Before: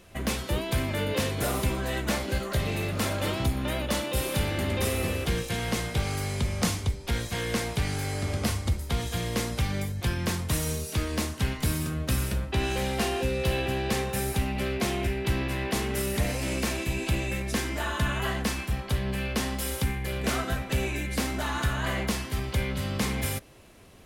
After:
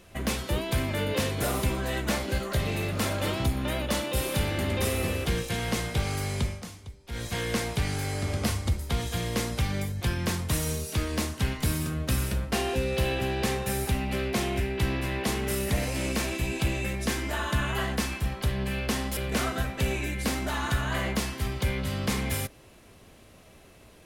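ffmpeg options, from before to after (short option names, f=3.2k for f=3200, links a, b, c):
-filter_complex "[0:a]asplit=5[a][b][c][d][e];[a]atrim=end=6.62,asetpts=PTS-STARTPTS,afade=t=out:st=6.43:d=0.19:silence=0.177828[f];[b]atrim=start=6.62:end=7.08,asetpts=PTS-STARTPTS,volume=-15dB[g];[c]atrim=start=7.08:end=12.522,asetpts=PTS-STARTPTS,afade=t=in:d=0.19:silence=0.177828[h];[d]atrim=start=12.988:end=19.642[i];[e]atrim=start=20.088[j];[f][g][h]concat=n=3:v=0:a=1[k];[k][i]acrossfade=d=0.004:c1=hsin:c2=hsin[l];[l][j]acrossfade=d=0.004:c1=hsin:c2=hsin"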